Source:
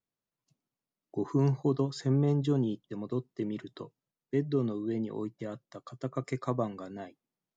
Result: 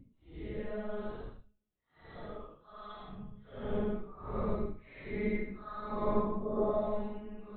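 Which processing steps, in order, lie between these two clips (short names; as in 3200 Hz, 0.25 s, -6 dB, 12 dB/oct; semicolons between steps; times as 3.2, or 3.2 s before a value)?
monotone LPC vocoder at 8 kHz 210 Hz; Paulstretch 5.2×, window 0.10 s, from 5.32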